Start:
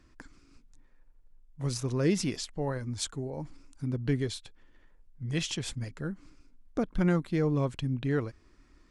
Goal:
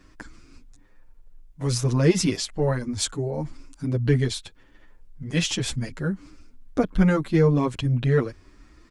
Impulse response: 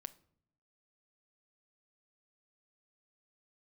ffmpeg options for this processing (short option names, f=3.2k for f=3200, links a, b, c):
-filter_complex "[0:a]asplit=2[a][b];[b]asoftclip=type=tanh:threshold=-23.5dB,volume=-10dB[c];[a][c]amix=inputs=2:normalize=0,asplit=2[d][e];[e]adelay=7.8,afreqshift=1.3[f];[d][f]amix=inputs=2:normalize=1,volume=9dB"